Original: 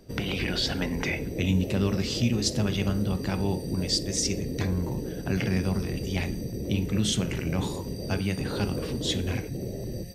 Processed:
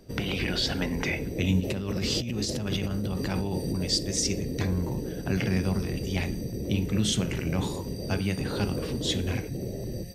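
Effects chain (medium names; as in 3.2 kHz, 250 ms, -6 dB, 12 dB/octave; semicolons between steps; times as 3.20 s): 1.60–3.81 s: compressor with a negative ratio -29 dBFS, ratio -1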